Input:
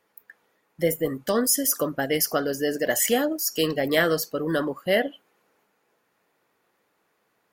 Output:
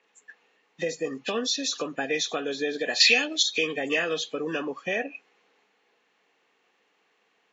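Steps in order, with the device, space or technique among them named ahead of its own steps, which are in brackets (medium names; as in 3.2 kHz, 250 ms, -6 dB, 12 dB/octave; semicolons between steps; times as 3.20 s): hearing aid with frequency lowering (knee-point frequency compression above 1.7 kHz 1.5:1; compression 3:1, threshold -27 dBFS, peak gain reduction 8 dB; cabinet simulation 330–5300 Hz, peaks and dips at 340 Hz -6 dB, 590 Hz -10 dB, 960 Hz -6 dB, 1.4 kHz -8 dB, 2.7 kHz +7 dB, 5.2 kHz -4 dB); 3.00–3.43 s: frequency weighting D; trim +6 dB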